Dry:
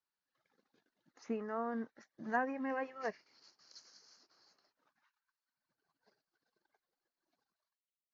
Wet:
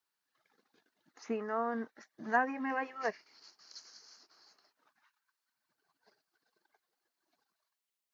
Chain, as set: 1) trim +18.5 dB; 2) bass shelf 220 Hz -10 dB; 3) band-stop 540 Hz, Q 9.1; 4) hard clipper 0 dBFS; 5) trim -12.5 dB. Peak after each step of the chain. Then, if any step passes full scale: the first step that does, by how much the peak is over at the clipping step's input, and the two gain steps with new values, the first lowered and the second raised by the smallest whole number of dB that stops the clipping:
-1.5 dBFS, -2.0 dBFS, -2.5 dBFS, -2.5 dBFS, -15.0 dBFS; nothing clips

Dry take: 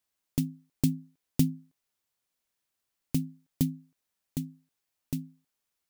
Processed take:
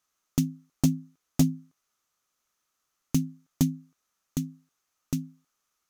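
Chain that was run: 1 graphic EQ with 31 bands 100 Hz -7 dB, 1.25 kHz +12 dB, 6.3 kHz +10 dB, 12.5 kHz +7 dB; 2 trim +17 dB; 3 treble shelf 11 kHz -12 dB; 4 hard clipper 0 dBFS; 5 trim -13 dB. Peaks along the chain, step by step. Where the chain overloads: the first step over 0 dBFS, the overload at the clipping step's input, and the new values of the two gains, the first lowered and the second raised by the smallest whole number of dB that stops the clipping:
-9.0 dBFS, +8.0 dBFS, +6.5 dBFS, 0.0 dBFS, -13.0 dBFS; step 2, 6.5 dB; step 2 +10 dB, step 5 -6 dB

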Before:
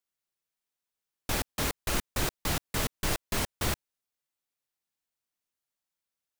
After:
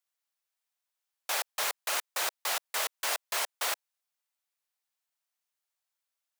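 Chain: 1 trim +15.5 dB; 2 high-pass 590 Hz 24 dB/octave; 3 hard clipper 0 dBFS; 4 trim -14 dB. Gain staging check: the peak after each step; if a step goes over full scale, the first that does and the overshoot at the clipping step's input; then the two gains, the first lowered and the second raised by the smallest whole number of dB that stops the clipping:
-0.5 dBFS, -3.5 dBFS, -3.5 dBFS, -17.5 dBFS; nothing clips

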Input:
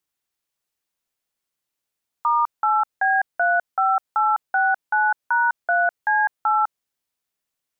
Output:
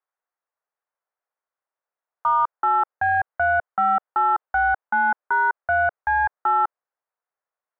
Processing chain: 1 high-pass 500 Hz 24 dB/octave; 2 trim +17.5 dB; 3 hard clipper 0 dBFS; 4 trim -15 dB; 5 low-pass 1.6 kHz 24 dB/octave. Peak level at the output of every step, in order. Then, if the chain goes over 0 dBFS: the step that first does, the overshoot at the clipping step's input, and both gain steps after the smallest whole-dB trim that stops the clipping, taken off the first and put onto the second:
-12.5 dBFS, +5.0 dBFS, 0.0 dBFS, -15.0 dBFS, -13.5 dBFS; step 2, 5.0 dB; step 2 +12.5 dB, step 4 -10 dB

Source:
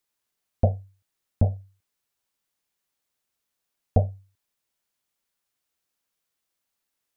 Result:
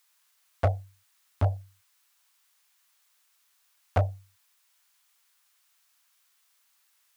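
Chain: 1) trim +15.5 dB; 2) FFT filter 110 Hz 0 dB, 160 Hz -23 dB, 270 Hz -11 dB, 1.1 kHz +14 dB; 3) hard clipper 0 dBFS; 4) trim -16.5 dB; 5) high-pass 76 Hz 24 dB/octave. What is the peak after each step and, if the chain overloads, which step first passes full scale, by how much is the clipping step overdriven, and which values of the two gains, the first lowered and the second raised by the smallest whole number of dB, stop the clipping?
+7.5 dBFS, +9.5 dBFS, 0.0 dBFS, -16.5 dBFS, -11.5 dBFS; step 1, 9.5 dB; step 1 +5.5 dB, step 4 -6.5 dB

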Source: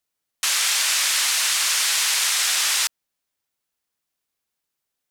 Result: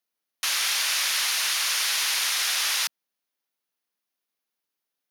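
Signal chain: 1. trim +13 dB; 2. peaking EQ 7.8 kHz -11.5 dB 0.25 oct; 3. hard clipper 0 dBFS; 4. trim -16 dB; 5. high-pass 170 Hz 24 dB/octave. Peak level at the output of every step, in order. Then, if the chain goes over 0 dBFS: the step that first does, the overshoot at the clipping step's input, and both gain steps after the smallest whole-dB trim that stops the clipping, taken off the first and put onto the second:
+5.0 dBFS, +3.5 dBFS, 0.0 dBFS, -16.0 dBFS, -15.0 dBFS; step 1, 3.5 dB; step 1 +9 dB, step 4 -12 dB

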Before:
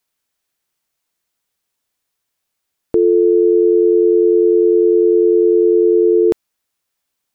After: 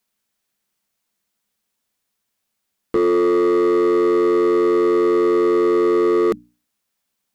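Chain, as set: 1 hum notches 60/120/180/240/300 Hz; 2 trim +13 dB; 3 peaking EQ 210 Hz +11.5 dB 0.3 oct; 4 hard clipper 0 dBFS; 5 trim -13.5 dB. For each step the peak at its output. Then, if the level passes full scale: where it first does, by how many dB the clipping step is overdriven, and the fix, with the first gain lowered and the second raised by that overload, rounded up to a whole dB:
-5.0 dBFS, +8.0 dBFS, +8.5 dBFS, 0.0 dBFS, -13.5 dBFS; step 2, 8.5 dB; step 2 +4 dB, step 5 -4.5 dB

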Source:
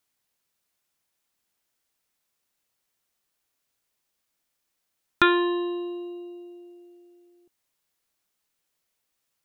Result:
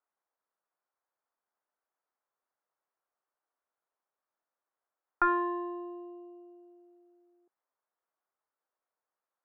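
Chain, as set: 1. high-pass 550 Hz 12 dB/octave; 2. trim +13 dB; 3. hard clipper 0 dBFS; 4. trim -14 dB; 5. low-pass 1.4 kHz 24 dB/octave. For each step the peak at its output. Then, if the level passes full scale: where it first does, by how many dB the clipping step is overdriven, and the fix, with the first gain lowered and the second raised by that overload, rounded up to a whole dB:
-4.0 dBFS, +9.0 dBFS, 0.0 dBFS, -14.0 dBFS, -15.0 dBFS; step 2, 9.0 dB; step 2 +4 dB, step 4 -5 dB

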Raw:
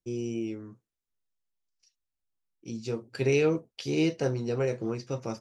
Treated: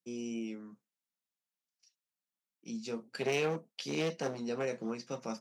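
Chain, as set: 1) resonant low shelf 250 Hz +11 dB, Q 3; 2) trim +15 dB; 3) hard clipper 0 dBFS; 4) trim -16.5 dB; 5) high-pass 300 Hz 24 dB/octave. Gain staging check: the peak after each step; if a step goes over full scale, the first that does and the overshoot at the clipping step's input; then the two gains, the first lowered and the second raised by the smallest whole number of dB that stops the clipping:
-8.5 dBFS, +6.5 dBFS, 0.0 dBFS, -16.5 dBFS, -19.5 dBFS; step 2, 6.5 dB; step 2 +8 dB, step 4 -9.5 dB

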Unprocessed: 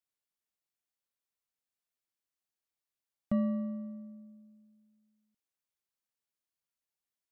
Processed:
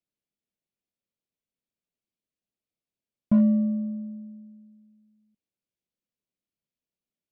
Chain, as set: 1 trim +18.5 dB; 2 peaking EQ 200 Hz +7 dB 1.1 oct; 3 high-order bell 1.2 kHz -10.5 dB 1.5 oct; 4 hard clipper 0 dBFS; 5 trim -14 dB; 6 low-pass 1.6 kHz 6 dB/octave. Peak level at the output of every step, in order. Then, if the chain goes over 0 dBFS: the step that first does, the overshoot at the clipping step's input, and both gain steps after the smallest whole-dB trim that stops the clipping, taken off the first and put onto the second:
-2.0 dBFS, +3.5 dBFS, +3.0 dBFS, 0.0 dBFS, -14.0 dBFS, -14.0 dBFS; step 2, 3.0 dB; step 1 +15.5 dB, step 5 -11 dB

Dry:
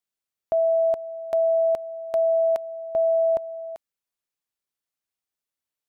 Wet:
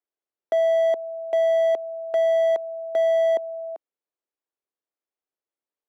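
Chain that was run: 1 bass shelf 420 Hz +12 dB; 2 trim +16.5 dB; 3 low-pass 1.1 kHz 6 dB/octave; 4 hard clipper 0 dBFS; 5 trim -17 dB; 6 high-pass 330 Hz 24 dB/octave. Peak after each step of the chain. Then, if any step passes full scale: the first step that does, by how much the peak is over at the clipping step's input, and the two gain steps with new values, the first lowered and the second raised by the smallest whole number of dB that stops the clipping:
-11.0 dBFS, +5.5 dBFS, +4.5 dBFS, 0.0 dBFS, -17.0 dBFS, -15.0 dBFS; step 2, 4.5 dB; step 2 +11.5 dB, step 5 -12 dB

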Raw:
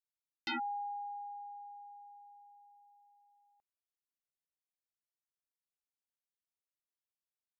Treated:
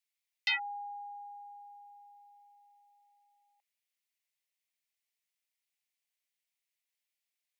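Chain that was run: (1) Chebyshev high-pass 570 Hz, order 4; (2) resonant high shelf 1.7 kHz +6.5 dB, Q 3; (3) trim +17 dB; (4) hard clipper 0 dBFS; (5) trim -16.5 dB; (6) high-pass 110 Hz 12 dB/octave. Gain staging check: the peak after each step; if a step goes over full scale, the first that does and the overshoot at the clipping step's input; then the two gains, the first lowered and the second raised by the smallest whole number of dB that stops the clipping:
-29.0 dBFS, -20.0 dBFS, -3.0 dBFS, -3.0 dBFS, -19.5 dBFS, -19.5 dBFS; nothing clips

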